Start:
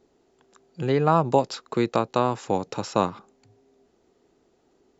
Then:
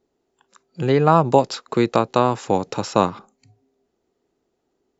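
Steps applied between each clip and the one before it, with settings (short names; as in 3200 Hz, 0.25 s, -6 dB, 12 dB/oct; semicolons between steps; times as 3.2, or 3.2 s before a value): spectral noise reduction 13 dB; gain +5 dB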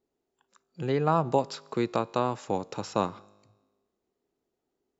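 resonator 51 Hz, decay 1.3 s, harmonics all, mix 30%; gain -7 dB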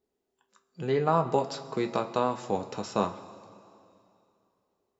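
two-slope reverb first 0.22 s, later 2.7 s, from -18 dB, DRR 5 dB; gain -1.5 dB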